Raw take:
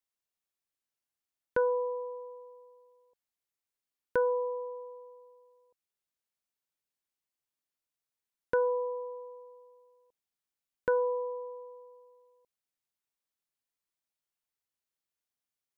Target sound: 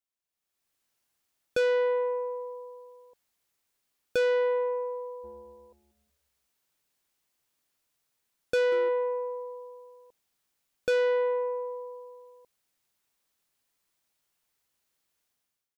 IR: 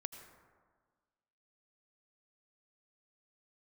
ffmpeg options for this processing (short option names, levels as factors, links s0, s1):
-filter_complex "[0:a]dynaudnorm=f=220:g=5:m=5.96,asoftclip=type=tanh:threshold=0.106,asplit=3[s0][s1][s2];[s0]afade=t=out:st=5.23:d=0.02[s3];[s1]asplit=5[s4][s5][s6][s7][s8];[s5]adelay=187,afreqshift=-140,volume=0.112[s9];[s6]adelay=374,afreqshift=-280,volume=0.0537[s10];[s7]adelay=561,afreqshift=-420,volume=0.0257[s11];[s8]adelay=748,afreqshift=-560,volume=0.0124[s12];[s4][s9][s10][s11][s12]amix=inputs=5:normalize=0,afade=t=in:st=5.23:d=0.02,afade=t=out:st=8.88:d=0.02[s13];[s2]afade=t=in:st=8.88:d=0.02[s14];[s3][s13][s14]amix=inputs=3:normalize=0,volume=0.708"